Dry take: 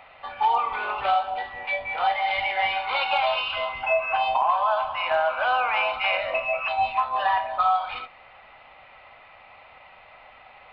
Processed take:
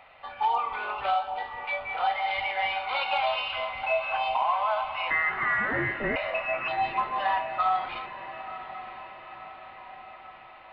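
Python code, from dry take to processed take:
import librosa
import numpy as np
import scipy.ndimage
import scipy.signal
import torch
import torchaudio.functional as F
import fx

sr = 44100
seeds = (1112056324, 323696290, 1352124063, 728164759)

y = fx.freq_invert(x, sr, carrier_hz=2700, at=(5.1, 6.16))
y = fx.echo_diffused(y, sr, ms=986, feedback_pct=56, wet_db=-13)
y = F.gain(torch.from_numpy(y), -4.0).numpy()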